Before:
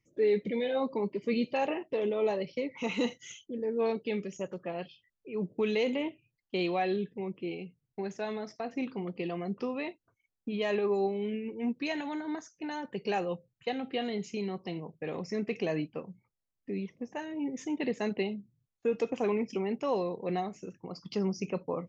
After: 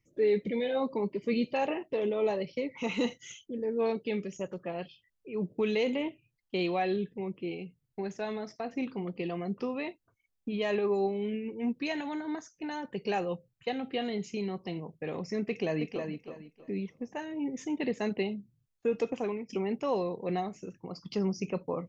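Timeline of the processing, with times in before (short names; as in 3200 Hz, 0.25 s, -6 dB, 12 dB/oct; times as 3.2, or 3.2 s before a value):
15.48–16.09 echo throw 0.32 s, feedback 25%, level -6 dB
19.08–19.49 fade out, to -13 dB
whole clip: low shelf 74 Hz +7 dB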